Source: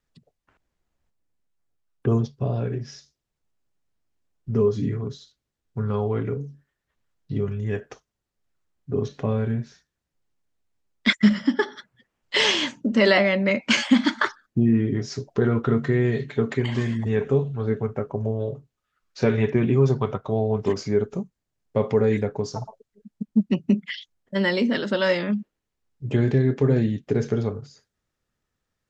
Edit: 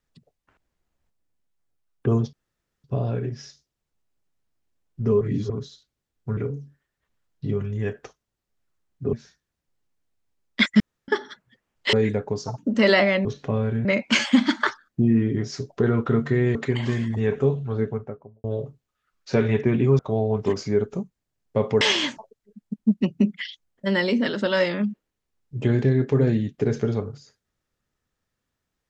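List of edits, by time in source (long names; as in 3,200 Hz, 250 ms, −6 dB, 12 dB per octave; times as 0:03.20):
0:02.33: splice in room tone 0.51 s
0:04.70–0:04.99: reverse
0:05.86–0:06.24: remove
0:09.00–0:09.60: move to 0:13.43
0:11.27–0:11.55: fill with room tone
0:12.40–0:12.76: swap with 0:22.01–0:22.66
0:16.13–0:16.44: remove
0:17.61–0:18.33: fade out and dull
0:19.88–0:20.19: remove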